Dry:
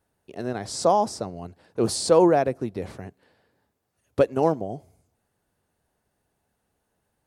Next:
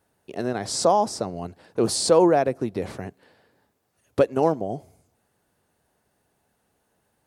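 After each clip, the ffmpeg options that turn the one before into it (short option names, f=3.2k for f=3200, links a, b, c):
-filter_complex "[0:a]asplit=2[a][b];[b]acompressor=threshold=-28dB:ratio=6,volume=1.5dB[c];[a][c]amix=inputs=2:normalize=0,lowshelf=f=68:g=-10,volume=-1.5dB"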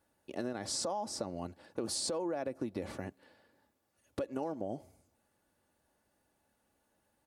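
-af "aecho=1:1:3.5:0.4,alimiter=limit=-15dB:level=0:latency=1:release=79,acompressor=threshold=-26dB:ratio=6,volume=-6.5dB"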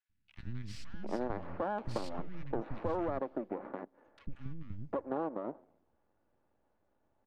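-filter_complex "[0:a]aeval=exprs='max(val(0),0)':c=same,acrossover=split=200|2000[a][b][c];[a]adelay=90[d];[b]adelay=750[e];[d][e][c]amix=inputs=3:normalize=0,adynamicsmooth=sensitivity=3.5:basefreq=1.7k,volume=6.5dB"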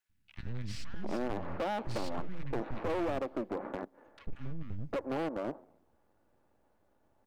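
-af "asoftclip=type=hard:threshold=-34.5dB,volume=5dB"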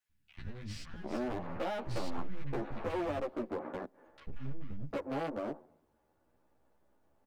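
-filter_complex "[0:a]asplit=2[a][b];[b]adelay=11.9,afreqshift=0.42[c];[a][c]amix=inputs=2:normalize=1,volume=1.5dB"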